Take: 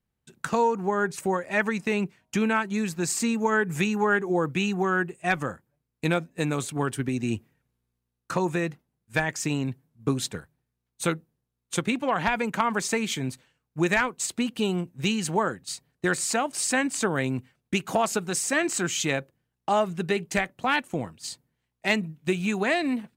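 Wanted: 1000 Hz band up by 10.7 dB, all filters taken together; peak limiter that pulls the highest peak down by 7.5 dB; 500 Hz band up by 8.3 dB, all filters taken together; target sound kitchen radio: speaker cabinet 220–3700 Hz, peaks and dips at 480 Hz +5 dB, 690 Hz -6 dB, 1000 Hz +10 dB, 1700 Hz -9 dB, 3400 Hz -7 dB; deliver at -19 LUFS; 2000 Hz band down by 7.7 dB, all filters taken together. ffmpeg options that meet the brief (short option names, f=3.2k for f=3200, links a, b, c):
-af "equalizer=f=500:t=o:g=7,equalizer=f=1k:t=o:g=8,equalizer=f=2k:t=o:g=-8.5,alimiter=limit=-12dB:level=0:latency=1,highpass=220,equalizer=f=480:t=q:w=4:g=5,equalizer=f=690:t=q:w=4:g=-6,equalizer=f=1k:t=q:w=4:g=10,equalizer=f=1.7k:t=q:w=4:g=-9,equalizer=f=3.4k:t=q:w=4:g=-7,lowpass=f=3.7k:w=0.5412,lowpass=f=3.7k:w=1.3066,volume=5dB"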